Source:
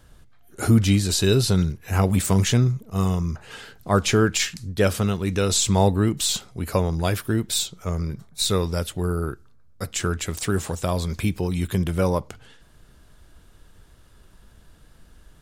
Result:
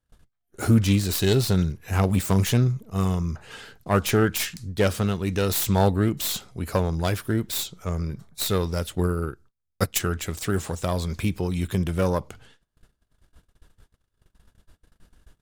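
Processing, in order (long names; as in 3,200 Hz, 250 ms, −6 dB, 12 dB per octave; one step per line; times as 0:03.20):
phase distortion by the signal itself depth 0.13 ms
0:08.95–0:09.99: transient designer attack +10 dB, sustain −6 dB
noise gate −47 dBFS, range −27 dB
level −1.5 dB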